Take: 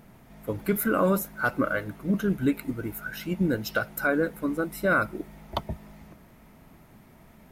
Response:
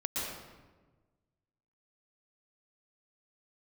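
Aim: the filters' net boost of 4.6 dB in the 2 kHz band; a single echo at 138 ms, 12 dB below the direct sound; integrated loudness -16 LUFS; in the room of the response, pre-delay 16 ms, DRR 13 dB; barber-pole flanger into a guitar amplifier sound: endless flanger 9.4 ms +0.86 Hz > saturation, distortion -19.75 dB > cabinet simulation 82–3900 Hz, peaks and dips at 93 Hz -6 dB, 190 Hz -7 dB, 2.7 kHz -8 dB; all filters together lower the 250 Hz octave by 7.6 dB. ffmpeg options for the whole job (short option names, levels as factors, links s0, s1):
-filter_complex "[0:a]equalizer=f=250:t=o:g=-7,equalizer=f=2000:t=o:g=8.5,aecho=1:1:138:0.251,asplit=2[s0][s1];[1:a]atrim=start_sample=2205,adelay=16[s2];[s1][s2]afir=irnorm=-1:irlink=0,volume=0.126[s3];[s0][s3]amix=inputs=2:normalize=0,asplit=2[s4][s5];[s5]adelay=9.4,afreqshift=0.86[s6];[s4][s6]amix=inputs=2:normalize=1,asoftclip=threshold=0.15,highpass=82,equalizer=f=93:t=q:w=4:g=-6,equalizer=f=190:t=q:w=4:g=-7,equalizer=f=2700:t=q:w=4:g=-8,lowpass=f=3900:w=0.5412,lowpass=f=3900:w=1.3066,volume=5.96"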